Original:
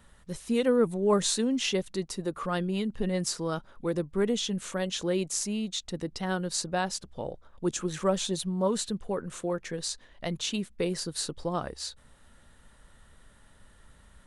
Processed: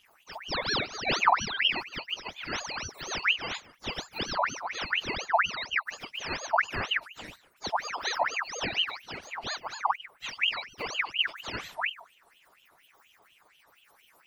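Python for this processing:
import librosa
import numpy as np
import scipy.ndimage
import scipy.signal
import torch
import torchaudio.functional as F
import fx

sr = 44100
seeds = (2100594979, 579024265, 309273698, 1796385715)

y = fx.octave_mirror(x, sr, pivot_hz=800.0)
y = y + 10.0 ** (-19.5 / 20.0) * np.pad(y, (int(148 * sr / 1000.0), 0))[:len(y)]
y = fx.ring_lfo(y, sr, carrier_hz=1900.0, swing_pct=60, hz=4.2)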